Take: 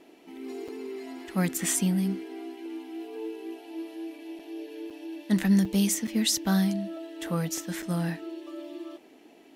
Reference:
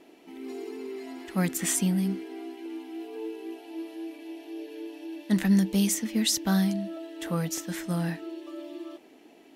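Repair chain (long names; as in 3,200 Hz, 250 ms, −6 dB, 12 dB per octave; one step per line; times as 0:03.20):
repair the gap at 0:00.68/0:04.39/0:04.90/0:05.65/0:06.07/0:07.82, 5.3 ms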